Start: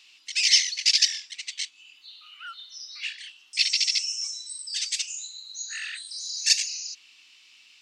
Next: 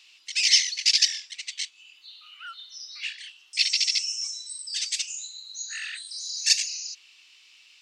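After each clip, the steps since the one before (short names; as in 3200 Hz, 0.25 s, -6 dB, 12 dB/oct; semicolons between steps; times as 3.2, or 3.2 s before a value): Chebyshev high-pass 340 Hz, order 3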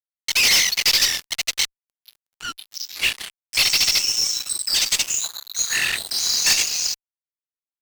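dynamic EQ 5300 Hz, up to -5 dB, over -31 dBFS, Q 0.85; fuzz box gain 31 dB, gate -39 dBFS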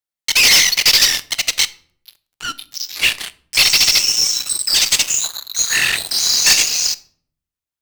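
shoebox room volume 800 m³, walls furnished, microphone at 0.44 m; gain +5.5 dB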